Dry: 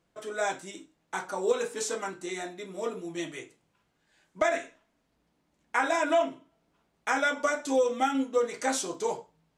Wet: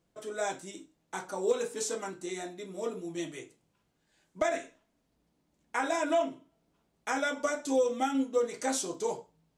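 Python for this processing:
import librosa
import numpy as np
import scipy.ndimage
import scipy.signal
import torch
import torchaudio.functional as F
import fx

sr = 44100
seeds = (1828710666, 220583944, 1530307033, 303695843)

y = fx.peak_eq(x, sr, hz=1600.0, db=-6.0, octaves=2.5)
y = np.clip(y, -10.0 ** (-17.0 / 20.0), 10.0 ** (-17.0 / 20.0))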